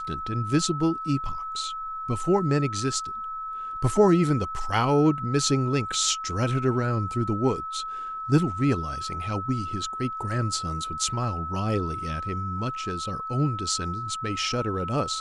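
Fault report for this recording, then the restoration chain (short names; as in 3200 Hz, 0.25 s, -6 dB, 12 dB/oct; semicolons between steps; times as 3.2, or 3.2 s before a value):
tone 1300 Hz -31 dBFS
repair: notch 1300 Hz, Q 30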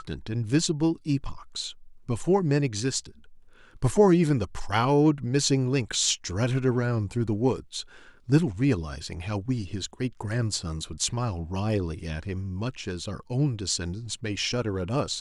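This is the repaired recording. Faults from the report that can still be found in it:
none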